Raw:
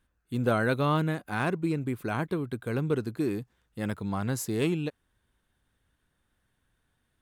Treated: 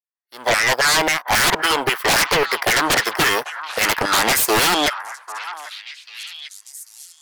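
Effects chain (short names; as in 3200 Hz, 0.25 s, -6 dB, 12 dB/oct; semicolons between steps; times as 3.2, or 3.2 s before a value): opening faded in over 2.07 s; power-law curve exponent 1.4; in parallel at -7 dB: one-sided clip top -30 dBFS; on the sum: formant shift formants +4 st; LFO high-pass saw down 3.7 Hz 680–1800 Hz; sine folder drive 19 dB, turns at -18.5 dBFS; on a send: delay with a stepping band-pass 0.793 s, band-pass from 1200 Hz, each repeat 1.4 oct, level -9 dB; on the sum: gain +6 dB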